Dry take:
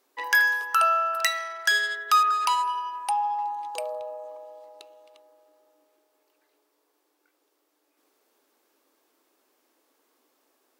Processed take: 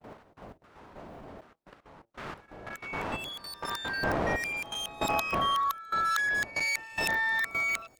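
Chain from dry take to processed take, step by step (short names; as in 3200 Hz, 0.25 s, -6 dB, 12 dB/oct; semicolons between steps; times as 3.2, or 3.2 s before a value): whole clip reversed; wind noise 460 Hz -35 dBFS; gate -44 dBFS, range -35 dB; bell 480 Hz +5 dB 0.32 oct; notches 60/120/180/240/300/360/420/480 Hz; level quantiser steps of 15 dB; added harmonics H 3 -16 dB, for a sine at -16.5 dBFS; dynamic EQ 890 Hz, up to +3 dB, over -45 dBFS, Q 0.77; echoes that change speed 0.108 s, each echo +6 st, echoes 2, each echo -6 dB; thin delay 0.296 s, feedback 50%, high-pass 4600 Hz, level -23 dB; speed mistake 33 rpm record played at 45 rpm; gain +4.5 dB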